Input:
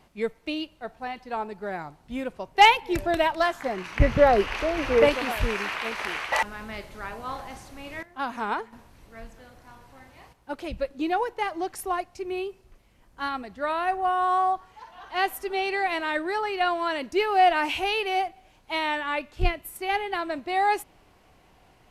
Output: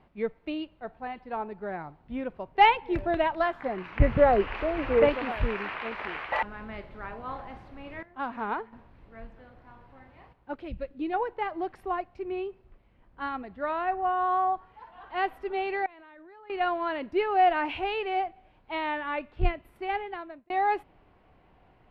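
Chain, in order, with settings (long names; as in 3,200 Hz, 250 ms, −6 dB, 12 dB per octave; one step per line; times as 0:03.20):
0:10.56–0:11.14: parametric band 890 Hz −7.5 dB 2 octaves
0:15.85–0:16.50: output level in coarse steps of 24 dB
high-frequency loss of the air 420 metres
0:19.86–0:20.50: fade out
level −1 dB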